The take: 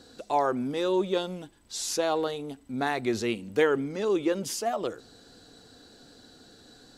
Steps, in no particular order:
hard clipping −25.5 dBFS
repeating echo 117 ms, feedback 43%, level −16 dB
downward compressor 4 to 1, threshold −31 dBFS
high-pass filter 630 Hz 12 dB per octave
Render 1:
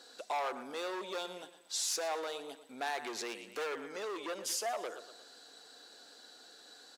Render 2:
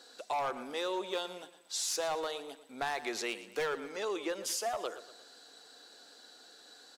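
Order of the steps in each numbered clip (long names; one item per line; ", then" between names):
repeating echo, then hard clipping, then downward compressor, then high-pass filter
high-pass filter, then hard clipping, then repeating echo, then downward compressor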